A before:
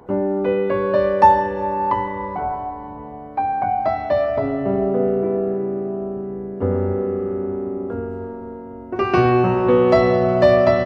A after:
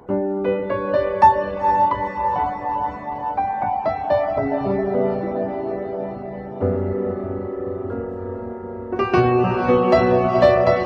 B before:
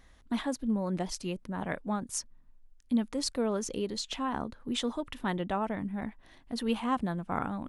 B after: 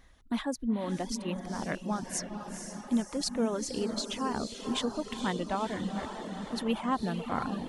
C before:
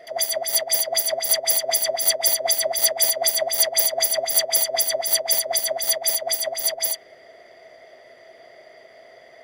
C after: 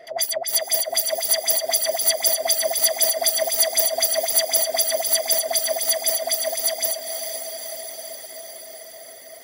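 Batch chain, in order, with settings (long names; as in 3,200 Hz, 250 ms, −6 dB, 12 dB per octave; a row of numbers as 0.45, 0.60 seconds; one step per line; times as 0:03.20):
feedback delay with all-pass diffusion 485 ms, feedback 68%, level −6.5 dB
reverb reduction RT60 0.58 s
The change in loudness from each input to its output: −1.0, 0.0, 0.0 LU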